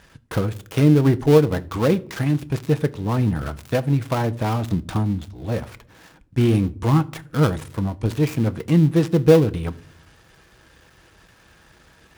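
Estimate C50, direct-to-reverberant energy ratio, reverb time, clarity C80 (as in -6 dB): 22.0 dB, 11.5 dB, no single decay rate, 26.0 dB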